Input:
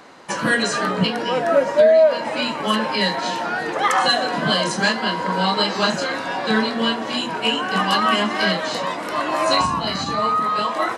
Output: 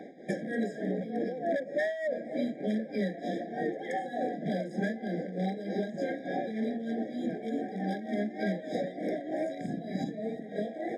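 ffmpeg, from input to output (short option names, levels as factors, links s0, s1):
-af "tiltshelf=f=880:g=9,aeval=exprs='0.355*(abs(mod(val(0)/0.355+3,4)-2)-1)':c=same,adynamicsmooth=sensitivity=8:basefreq=7400,highpass=f=170:w=0.5412,highpass=f=170:w=1.3066,acompressor=threshold=0.0447:ratio=6,tremolo=f=3.3:d=0.69,afftfilt=real='re*eq(mod(floor(b*sr/1024/790),2),0)':imag='im*eq(mod(floor(b*sr/1024/790),2),0)':win_size=1024:overlap=0.75"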